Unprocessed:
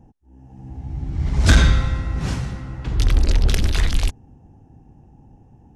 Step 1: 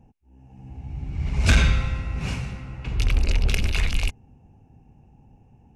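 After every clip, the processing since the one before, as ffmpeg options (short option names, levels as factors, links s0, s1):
-af "superequalizer=6b=0.631:12b=2.82,volume=0.596"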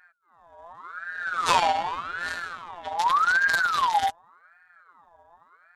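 -af "afftfilt=real='hypot(re,im)*cos(PI*b)':imag='0':win_size=1024:overlap=0.75,aeval=exprs='val(0)*sin(2*PI*1200*n/s+1200*0.35/0.86*sin(2*PI*0.86*n/s))':c=same,volume=1.5"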